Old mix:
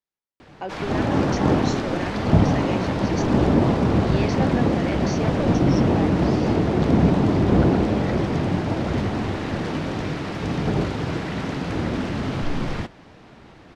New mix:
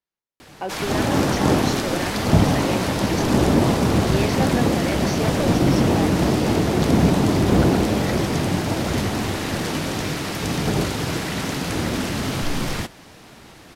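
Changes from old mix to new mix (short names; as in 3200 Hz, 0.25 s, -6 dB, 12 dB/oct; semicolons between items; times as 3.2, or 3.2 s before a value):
background: remove tape spacing loss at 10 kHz 22 dB; reverb: on, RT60 1.5 s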